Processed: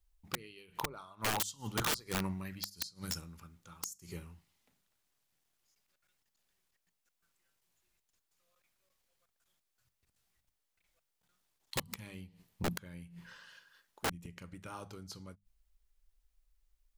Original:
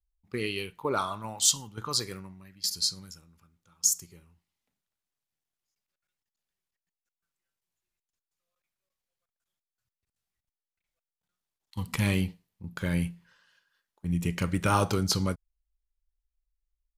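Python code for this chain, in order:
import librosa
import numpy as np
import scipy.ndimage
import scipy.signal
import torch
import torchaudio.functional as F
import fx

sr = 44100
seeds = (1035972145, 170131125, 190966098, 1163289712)

y = fx.gate_flip(x, sr, shuts_db=-22.0, range_db=-30)
y = (np.mod(10.0 ** (35.0 / 20.0) * y + 1.0, 2.0) - 1.0) / 10.0 ** (35.0 / 20.0)
y = fx.hum_notches(y, sr, base_hz=50, count=4)
y = y * librosa.db_to_amplitude(9.0)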